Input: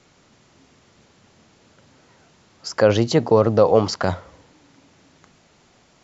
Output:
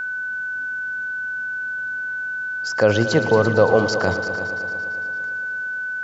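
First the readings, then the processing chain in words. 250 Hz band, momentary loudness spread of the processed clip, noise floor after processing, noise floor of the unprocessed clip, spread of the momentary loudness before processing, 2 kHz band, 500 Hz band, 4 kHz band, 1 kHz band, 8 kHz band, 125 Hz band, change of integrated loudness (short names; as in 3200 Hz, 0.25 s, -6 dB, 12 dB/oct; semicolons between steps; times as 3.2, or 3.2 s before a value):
-0.5 dB, 9 LU, -27 dBFS, -57 dBFS, 16 LU, +17.0 dB, -0.5 dB, 0.0 dB, 0.0 dB, n/a, -0.5 dB, -3.5 dB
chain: multi-head echo 0.113 s, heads all three, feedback 56%, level -15 dB; whine 1500 Hz -23 dBFS; gain -1 dB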